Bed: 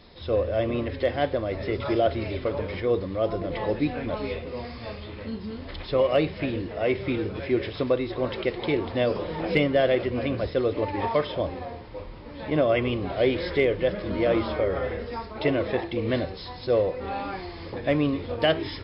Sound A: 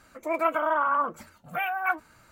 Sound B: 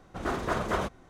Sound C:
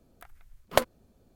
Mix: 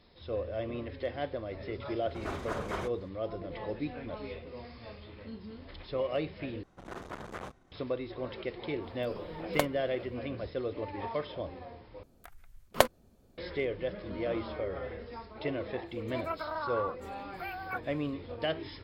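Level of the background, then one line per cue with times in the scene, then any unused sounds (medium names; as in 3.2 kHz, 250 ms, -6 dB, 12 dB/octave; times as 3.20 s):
bed -10.5 dB
2.00 s: add B -7.5 dB
6.63 s: replace with B -8 dB + transformer saturation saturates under 1.2 kHz
8.82 s: add C -7 dB
12.03 s: replace with C -0.5 dB
15.85 s: add A -11.5 dB, fades 0.05 s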